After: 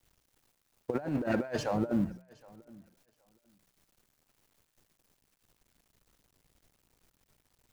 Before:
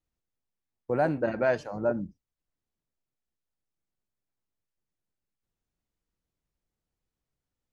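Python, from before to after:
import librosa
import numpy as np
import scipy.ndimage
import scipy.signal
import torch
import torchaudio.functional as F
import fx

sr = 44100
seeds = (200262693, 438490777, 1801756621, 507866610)

p1 = fx.law_mismatch(x, sr, coded='mu')
p2 = fx.hum_notches(p1, sr, base_hz=60, count=3)
p3 = fx.over_compress(p2, sr, threshold_db=-30.0, ratio=-0.5)
y = p3 + fx.echo_feedback(p3, sr, ms=767, feedback_pct=16, wet_db=-24.0, dry=0)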